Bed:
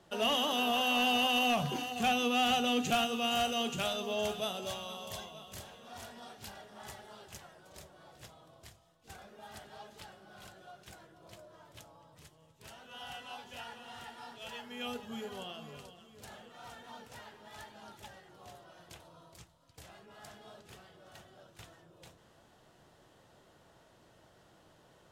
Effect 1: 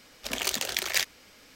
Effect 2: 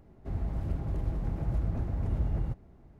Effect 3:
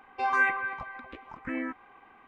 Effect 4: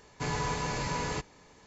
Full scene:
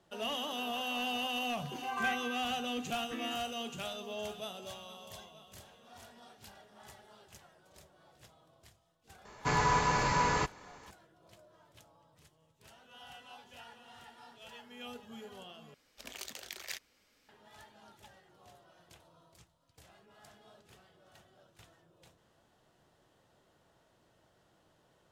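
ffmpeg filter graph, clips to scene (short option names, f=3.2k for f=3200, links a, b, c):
-filter_complex "[0:a]volume=-6.5dB[a];[4:a]equalizer=f=1.2k:w=0.95:g=7.5[b];[a]asplit=2[c][d];[c]atrim=end=15.744[e];[1:a]atrim=end=1.55,asetpts=PTS-STARTPTS,volume=-16dB[f];[d]atrim=start=17.286[g];[3:a]atrim=end=2.27,asetpts=PTS-STARTPTS,volume=-11dB,afade=t=in:d=0.004:c=hsin,afade=t=out:st=2.266:d=0.004:c=hsin,adelay=1640[h];[b]atrim=end=1.66,asetpts=PTS-STARTPTS,afade=t=in:d=0.004:c=hsin,afade=t=out:st=1.656:d=0.004:c=hsin,adelay=9250[i];[e][f]acrossfade=d=0.004:c1=hsin:c2=hsin[j];[j][g]acrossfade=d=0.004:c1=hsin:c2=hsin[k];[k][h][i]amix=inputs=3:normalize=0"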